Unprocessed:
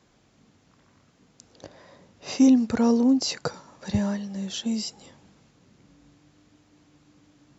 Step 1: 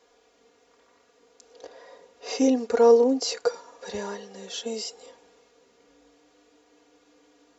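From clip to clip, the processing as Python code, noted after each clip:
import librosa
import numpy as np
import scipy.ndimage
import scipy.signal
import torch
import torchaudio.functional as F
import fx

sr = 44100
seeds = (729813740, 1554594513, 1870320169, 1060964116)

y = x + 0.8 * np.pad(x, (int(4.2 * sr / 1000.0), 0))[:len(x)]
y = fx.hpss(y, sr, part='percussive', gain_db=-5)
y = fx.low_shelf_res(y, sr, hz=290.0, db=-12.0, q=3.0)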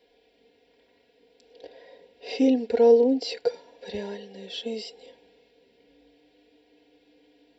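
y = fx.fixed_phaser(x, sr, hz=2900.0, stages=4)
y = F.gain(torch.from_numpy(y), 1.5).numpy()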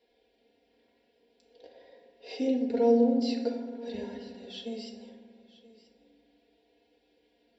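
y = x + 10.0 ** (-19.0 / 20.0) * np.pad(x, (int(982 * sr / 1000.0), 0))[:len(x)]
y = fx.rev_fdn(y, sr, rt60_s=1.5, lf_ratio=1.5, hf_ratio=0.4, size_ms=26.0, drr_db=1.5)
y = F.gain(torch.from_numpy(y), -8.5).numpy()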